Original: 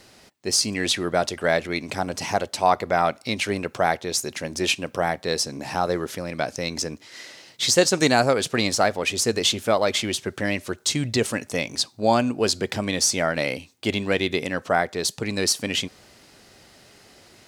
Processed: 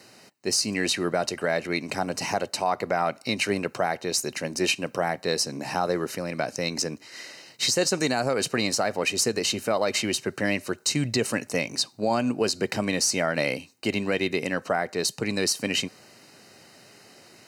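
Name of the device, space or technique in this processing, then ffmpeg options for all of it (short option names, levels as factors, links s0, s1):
PA system with an anti-feedback notch: -af "highpass=f=110:w=0.5412,highpass=f=110:w=1.3066,asuperstop=centerf=3400:order=20:qfactor=7.5,alimiter=limit=0.224:level=0:latency=1:release=102"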